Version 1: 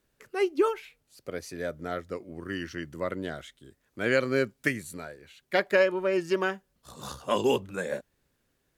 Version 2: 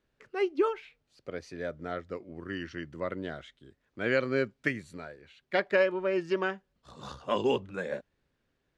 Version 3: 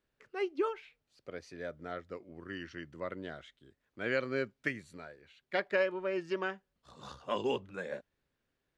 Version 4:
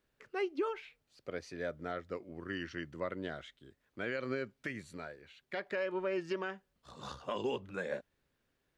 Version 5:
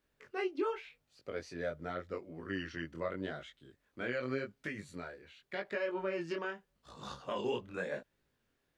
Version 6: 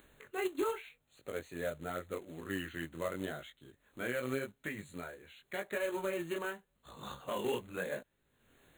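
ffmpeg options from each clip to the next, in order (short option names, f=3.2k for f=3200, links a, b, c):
-af "lowpass=4.3k,volume=-2.5dB"
-af "lowshelf=f=480:g=-3,volume=-4dB"
-af "alimiter=level_in=5dB:limit=-24dB:level=0:latency=1:release=124,volume=-5dB,volume=3dB"
-af "flanger=delay=19:depth=5.7:speed=0.86,volume=3dB"
-af "acrusher=bits=3:mode=log:mix=0:aa=0.000001,acompressor=mode=upward:threshold=-50dB:ratio=2.5,asuperstop=centerf=5200:order=12:qfactor=2.5"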